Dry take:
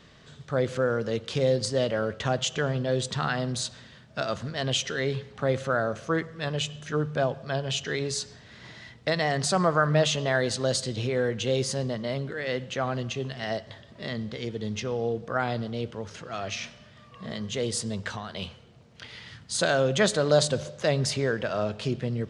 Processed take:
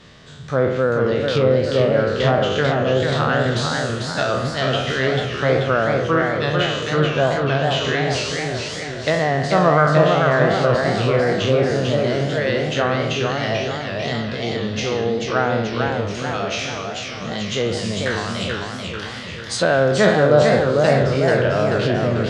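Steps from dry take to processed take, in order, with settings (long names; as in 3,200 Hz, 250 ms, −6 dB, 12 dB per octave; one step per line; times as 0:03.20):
peak hold with a decay on every bin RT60 0.90 s
treble cut that deepens with the level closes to 1,800 Hz, closed at −20 dBFS
feedback echo with a swinging delay time 441 ms, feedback 57%, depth 168 cents, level −4 dB
level +6 dB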